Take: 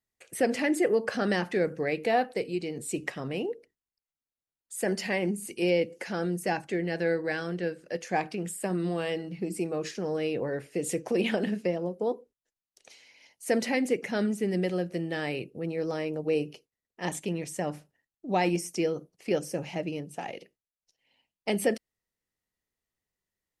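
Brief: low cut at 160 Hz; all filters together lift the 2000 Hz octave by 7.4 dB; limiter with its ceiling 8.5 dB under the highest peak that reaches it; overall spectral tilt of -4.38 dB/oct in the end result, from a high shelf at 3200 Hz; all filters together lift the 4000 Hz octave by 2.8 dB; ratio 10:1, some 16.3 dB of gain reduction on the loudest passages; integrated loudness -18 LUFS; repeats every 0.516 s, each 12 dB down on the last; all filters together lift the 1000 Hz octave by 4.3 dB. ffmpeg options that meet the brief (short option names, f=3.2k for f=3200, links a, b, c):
-af "highpass=160,equalizer=f=1k:t=o:g=5.5,equalizer=f=2k:t=o:g=8.5,highshelf=f=3.2k:g=-8.5,equalizer=f=4k:t=o:g=6,acompressor=threshold=-35dB:ratio=10,alimiter=level_in=5.5dB:limit=-24dB:level=0:latency=1,volume=-5.5dB,aecho=1:1:516|1032|1548:0.251|0.0628|0.0157,volume=23dB"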